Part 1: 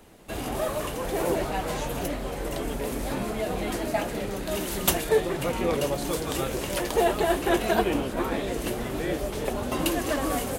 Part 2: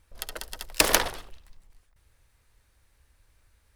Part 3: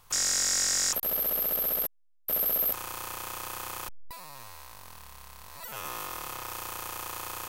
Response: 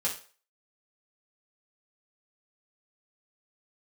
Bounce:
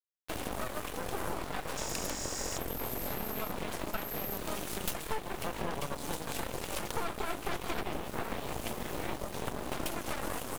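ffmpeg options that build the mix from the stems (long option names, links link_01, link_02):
-filter_complex "[0:a]aeval=exprs='0.473*(cos(1*acos(clip(val(0)/0.473,-1,1)))-cos(1*PI/2))+0.237*(cos(8*acos(clip(val(0)/0.473,-1,1)))-cos(8*PI/2))':channel_layout=same,volume=-4.5dB[link_01];[1:a]adelay=1150,volume=-12.5dB[link_02];[2:a]adelay=1650,volume=-6dB[link_03];[link_01][link_02][link_03]amix=inputs=3:normalize=0,acrusher=bits=6:mix=0:aa=0.000001,acompressor=threshold=-33dB:ratio=4"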